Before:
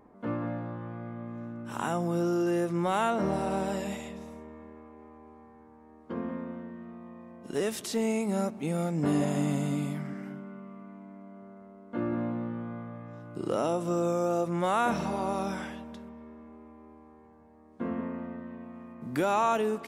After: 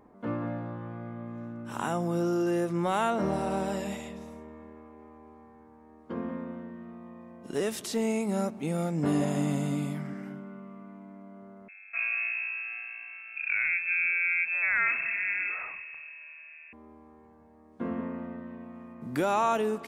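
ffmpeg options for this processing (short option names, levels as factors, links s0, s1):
-filter_complex "[0:a]asettb=1/sr,asplit=3[s0][s1][s2];[s0]atrim=end=11.684[s3];[s1]atrim=start=11.68:end=16.73,asetpts=PTS-STARTPTS,afade=t=in:d=0.004:c=qsin,afade=t=out:st=5.046:d=0.004:c=qsin,lowpass=f=2400:t=q:w=0.5098,lowpass=f=2400:t=q:w=0.6013,lowpass=f=2400:t=q:w=0.9,lowpass=f=2400:t=q:w=2.563,afreqshift=-2800[s4];[s2]atrim=start=16.726[s5];[s3][s4]acrossfade=d=0.004:c1=hsin:c2=qsin[s6];[s6][s5]acrossfade=d=0.004:c1=qsin:c2=hsin"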